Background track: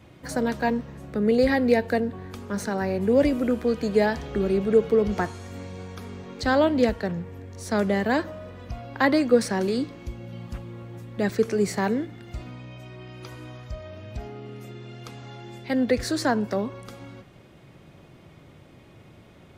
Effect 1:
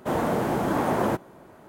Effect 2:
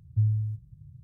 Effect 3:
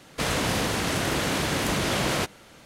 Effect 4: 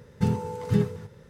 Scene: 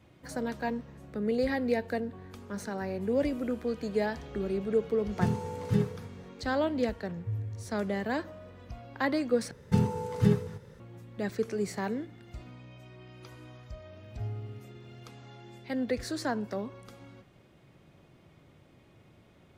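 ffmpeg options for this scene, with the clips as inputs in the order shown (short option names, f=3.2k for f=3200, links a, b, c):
-filter_complex "[4:a]asplit=2[a][b];[2:a]asplit=2[c][d];[0:a]volume=-8.5dB[e];[d]aeval=exprs='val(0)*gte(abs(val(0)),0.00316)':c=same[f];[e]asplit=2[g][h];[g]atrim=end=9.514[i];[b]atrim=end=1.29,asetpts=PTS-STARTPTS,volume=-1dB[j];[h]atrim=start=10.796[k];[a]atrim=end=1.29,asetpts=PTS-STARTPTS,volume=-4dB,afade=t=in:d=0.004:c=hsin,afade=t=out:st=1.286:d=0.004:c=hsin,adelay=5000[l];[c]atrim=end=1.03,asetpts=PTS-STARTPTS,volume=-10dB,afade=t=in:d=0.004:c=hsin,afade=t=out:st=1.026:d=0.004:c=hsin,adelay=7100[m];[f]atrim=end=1.03,asetpts=PTS-STARTPTS,volume=-12.5dB,afade=t=in:d=0.004:c=hsin,afade=t=out:st=1.026:d=0.004:c=hsin,adelay=14030[n];[i][j]acrossfade=d=0.004:c1=hsin:c2=hsin[o];[o][k]acrossfade=d=0.004:c1=hsin:c2=hsin[p];[p][l][m][n]amix=inputs=4:normalize=0"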